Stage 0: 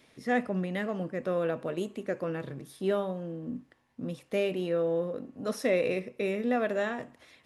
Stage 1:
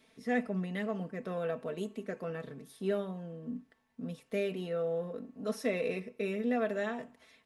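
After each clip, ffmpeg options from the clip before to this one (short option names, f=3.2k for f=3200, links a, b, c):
-af "aecho=1:1:4.5:0.66,volume=-6dB"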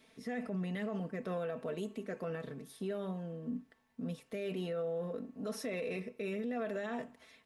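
-af "alimiter=level_in=7dB:limit=-24dB:level=0:latency=1:release=36,volume=-7dB,volume=1dB"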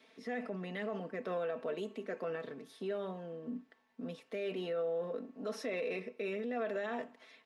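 -filter_complex "[0:a]acrossover=split=230 5800:gain=0.112 1 0.224[a][b][c];[a][b][c]amix=inputs=3:normalize=0,volume=2dB"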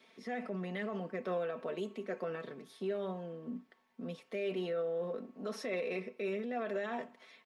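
-af "aecho=1:1:5.4:0.38"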